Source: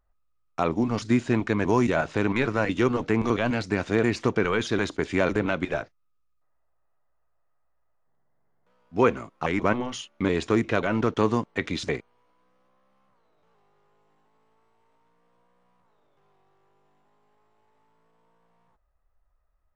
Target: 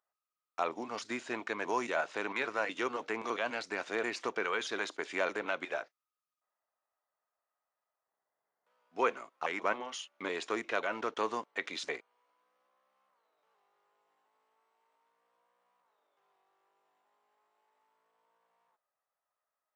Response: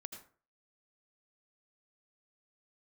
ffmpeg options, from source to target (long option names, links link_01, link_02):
-af "highpass=570,volume=-5.5dB"